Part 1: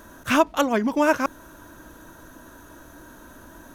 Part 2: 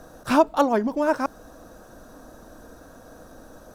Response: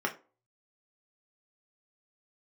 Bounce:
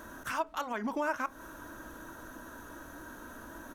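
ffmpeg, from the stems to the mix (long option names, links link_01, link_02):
-filter_complex "[0:a]equalizer=frequency=1400:width_type=o:width=0.89:gain=3,acompressor=threshold=-22dB:ratio=6,alimiter=limit=-22.5dB:level=0:latency=1:release=176,volume=-4dB,asplit=2[link_01][link_02];[link_02]volume=-17dB[link_03];[1:a]volume=-1,adelay=0.5,volume=-15.5dB[link_04];[2:a]atrim=start_sample=2205[link_05];[link_03][link_05]afir=irnorm=-1:irlink=0[link_06];[link_01][link_04][link_06]amix=inputs=3:normalize=0"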